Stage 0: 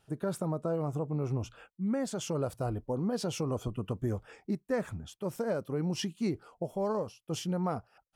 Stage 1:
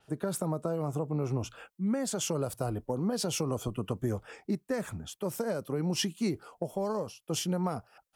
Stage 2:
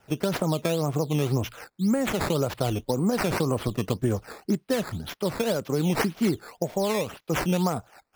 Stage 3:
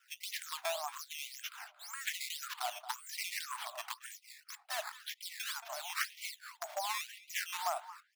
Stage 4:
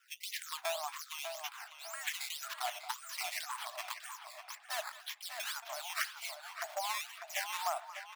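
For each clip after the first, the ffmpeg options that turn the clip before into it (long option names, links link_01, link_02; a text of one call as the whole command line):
ffmpeg -i in.wav -filter_complex "[0:a]lowshelf=frequency=170:gain=-7.5,acrossover=split=210|3000[link_01][link_02][link_03];[link_02]acompressor=threshold=-35dB:ratio=6[link_04];[link_01][link_04][link_03]amix=inputs=3:normalize=0,adynamicequalizer=threshold=0.00141:dfrequency=7200:dqfactor=0.7:tfrequency=7200:tqfactor=0.7:attack=5:release=100:ratio=0.375:range=3:mode=boostabove:tftype=highshelf,volume=5dB" out.wav
ffmpeg -i in.wav -af "acrusher=samples=10:mix=1:aa=0.000001:lfo=1:lforange=10:lforate=1.9,volume=6.5dB" out.wav
ffmpeg -i in.wav -filter_complex "[0:a]asplit=2[link_01][link_02];[link_02]adelay=226,lowpass=frequency=1500:poles=1,volume=-11dB,asplit=2[link_03][link_04];[link_04]adelay=226,lowpass=frequency=1500:poles=1,volume=0.4,asplit=2[link_05][link_06];[link_06]adelay=226,lowpass=frequency=1500:poles=1,volume=0.4,asplit=2[link_07][link_08];[link_08]adelay=226,lowpass=frequency=1500:poles=1,volume=0.4[link_09];[link_01][link_03][link_05][link_07][link_09]amix=inputs=5:normalize=0,aeval=exprs='0.158*(abs(mod(val(0)/0.158+3,4)-2)-1)':channel_layout=same,afftfilt=real='re*gte(b*sr/1024,580*pow(2000/580,0.5+0.5*sin(2*PI*1*pts/sr)))':imag='im*gte(b*sr/1024,580*pow(2000/580,0.5+0.5*sin(2*PI*1*pts/sr)))':win_size=1024:overlap=0.75,volume=-4.5dB" out.wav
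ffmpeg -i in.wav -filter_complex "[0:a]asplit=2[link_01][link_02];[link_02]adelay=598,lowpass=frequency=2300:poles=1,volume=-6dB,asplit=2[link_03][link_04];[link_04]adelay=598,lowpass=frequency=2300:poles=1,volume=0.41,asplit=2[link_05][link_06];[link_06]adelay=598,lowpass=frequency=2300:poles=1,volume=0.41,asplit=2[link_07][link_08];[link_08]adelay=598,lowpass=frequency=2300:poles=1,volume=0.41,asplit=2[link_09][link_10];[link_10]adelay=598,lowpass=frequency=2300:poles=1,volume=0.41[link_11];[link_01][link_03][link_05][link_07][link_09][link_11]amix=inputs=6:normalize=0" out.wav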